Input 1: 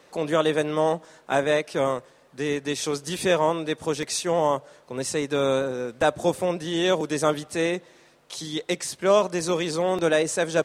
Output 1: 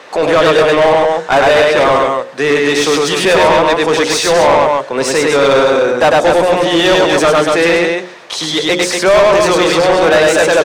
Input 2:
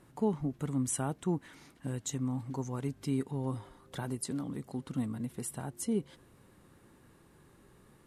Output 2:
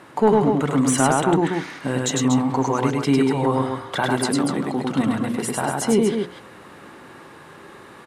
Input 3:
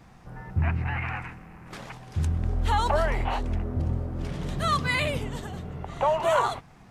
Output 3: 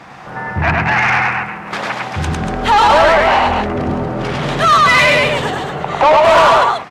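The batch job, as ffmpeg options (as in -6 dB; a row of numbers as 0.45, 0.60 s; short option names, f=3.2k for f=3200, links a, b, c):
-filter_complex "[0:a]highpass=45,highshelf=f=5.7k:g=-7.5,bandreject=f=60:t=h:w=6,bandreject=f=120:t=h:w=6,bandreject=f=180:t=h:w=6,bandreject=f=240:t=h:w=6,bandreject=f=300:t=h:w=6,bandreject=f=360:t=h:w=6,bandreject=f=420:t=h:w=6,bandreject=f=480:t=h:w=6,bandreject=f=540:t=h:w=6,aecho=1:1:102|239.1:0.794|0.447,asplit=2[a][b];[b]highpass=f=720:p=1,volume=25dB,asoftclip=type=tanh:threshold=-4.5dB[c];[a][c]amix=inputs=2:normalize=0,lowpass=f=3.8k:p=1,volume=-6dB,volume=3.5dB"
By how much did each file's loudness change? +14.0, +15.5, +15.0 LU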